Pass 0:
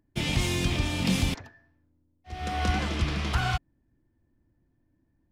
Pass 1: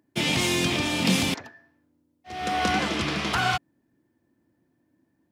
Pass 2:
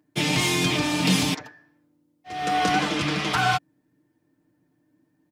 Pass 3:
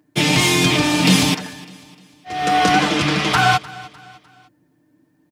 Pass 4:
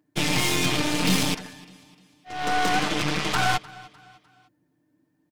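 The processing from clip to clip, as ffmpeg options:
-af "highpass=200,volume=6dB"
-af "aecho=1:1:6.6:0.68"
-af "aecho=1:1:302|604|906:0.1|0.041|0.0168,volume=7dB"
-af "aeval=exprs='0.794*(cos(1*acos(clip(val(0)/0.794,-1,1)))-cos(1*PI/2))+0.126*(cos(8*acos(clip(val(0)/0.794,-1,1)))-cos(8*PI/2))':c=same,volume=-9dB"

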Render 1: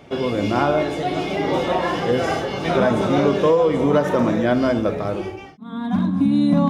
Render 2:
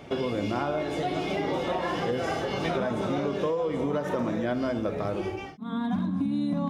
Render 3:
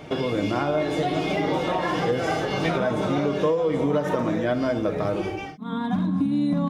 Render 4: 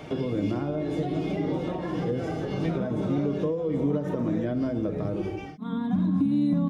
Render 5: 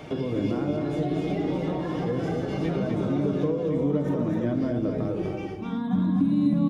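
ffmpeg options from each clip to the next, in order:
-af "acompressor=threshold=-26dB:ratio=5"
-af "aecho=1:1:6.5:0.34,volume=4dB"
-filter_complex "[0:a]acrossover=split=420[a][b];[b]acompressor=threshold=-43dB:ratio=3[c];[a][c]amix=inputs=2:normalize=0"
-af "aecho=1:1:252:0.596"

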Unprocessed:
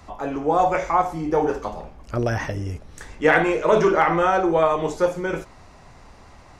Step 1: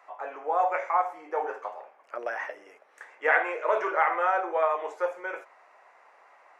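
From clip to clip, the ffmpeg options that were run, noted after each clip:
-af "highpass=f=520:w=0.5412,highpass=f=520:w=1.3066,highshelf=f=2.9k:t=q:w=1.5:g=-11,volume=-6dB"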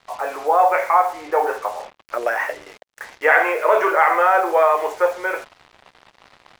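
-filter_complex "[0:a]asplit=2[a][b];[b]alimiter=limit=-19dB:level=0:latency=1:release=33,volume=1.5dB[c];[a][c]amix=inputs=2:normalize=0,acrusher=bits=6:mix=0:aa=0.5,volume=4.5dB"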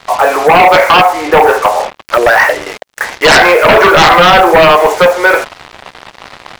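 -filter_complex "[0:a]asplit=2[a][b];[b]acompressor=threshold=-22dB:ratio=6,volume=-2dB[c];[a][c]amix=inputs=2:normalize=0,aeval=exprs='1*sin(PI/2*3.55*val(0)/1)':c=same,volume=-1dB"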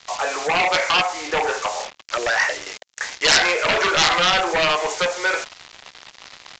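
-filter_complex "[0:a]acrossover=split=890[a][b];[b]crystalizer=i=6:c=0[c];[a][c]amix=inputs=2:normalize=0,aresample=16000,aresample=44100,volume=-16.5dB"

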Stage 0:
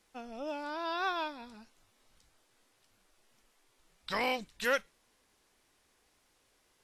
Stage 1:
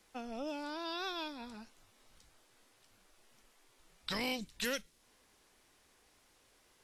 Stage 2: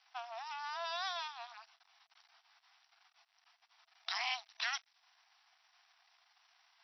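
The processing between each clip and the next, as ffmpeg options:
-filter_complex "[0:a]acrossover=split=340|3000[a][b][c];[b]acompressor=threshold=-45dB:ratio=6[d];[a][d][c]amix=inputs=3:normalize=0,volume=3dB"
-af "aeval=exprs='max(val(0),0)':c=same,afftfilt=real='re*between(b*sr/4096,660,5900)':imag='im*between(b*sr/4096,660,5900)':win_size=4096:overlap=0.75,volume=5.5dB"

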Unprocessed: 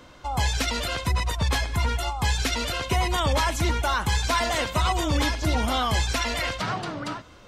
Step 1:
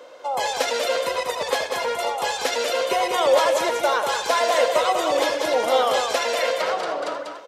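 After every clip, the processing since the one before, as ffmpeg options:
-filter_complex "[0:a]highpass=f=510:t=q:w=4.9,asplit=2[a][b];[b]aecho=0:1:81|193|289:0.211|0.562|0.15[c];[a][c]amix=inputs=2:normalize=0"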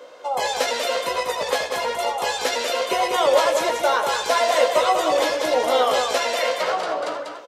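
-filter_complex "[0:a]asplit=2[a][b];[b]adelay=16,volume=-6.5dB[c];[a][c]amix=inputs=2:normalize=0"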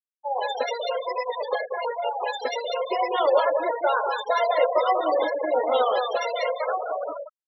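-af "acrusher=bits=8:mix=0:aa=0.000001,afftfilt=real='re*gte(hypot(re,im),0.141)':imag='im*gte(hypot(re,im),0.141)':win_size=1024:overlap=0.75,volume=-2.5dB"

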